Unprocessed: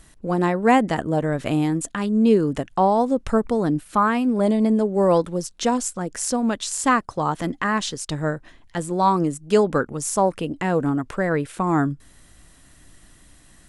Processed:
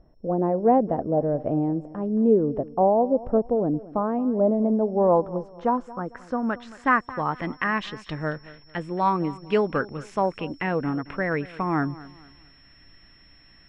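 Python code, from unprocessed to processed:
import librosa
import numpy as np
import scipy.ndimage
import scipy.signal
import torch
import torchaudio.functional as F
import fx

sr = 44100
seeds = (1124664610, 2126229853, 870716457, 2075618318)

y = x + 10.0 ** (-36.0 / 20.0) * np.sin(2.0 * np.pi * 5400.0 * np.arange(len(x)) / sr)
y = fx.filter_sweep_lowpass(y, sr, from_hz=620.0, to_hz=2400.0, start_s=4.38, end_s=7.63, q=2.2)
y = fx.echo_feedback(y, sr, ms=224, feedback_pct=34, wet_db=-18.5)
y = F.gain(torch.from_numpy(y), -5.0).numpy()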